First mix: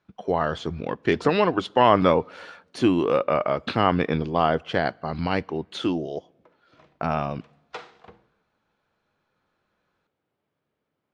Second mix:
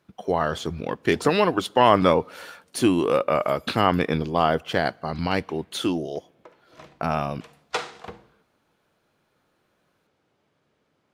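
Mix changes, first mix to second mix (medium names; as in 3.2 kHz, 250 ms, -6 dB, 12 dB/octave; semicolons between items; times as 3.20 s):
background +9.0 dB; master: remove distance through air 120 m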